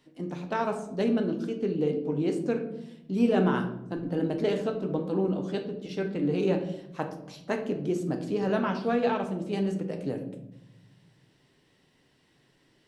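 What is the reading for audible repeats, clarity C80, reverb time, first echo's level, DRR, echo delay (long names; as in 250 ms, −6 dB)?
no echo audible, 12.0 dB, 0.85 s, no echo audible, 4.0 dB, no echo audible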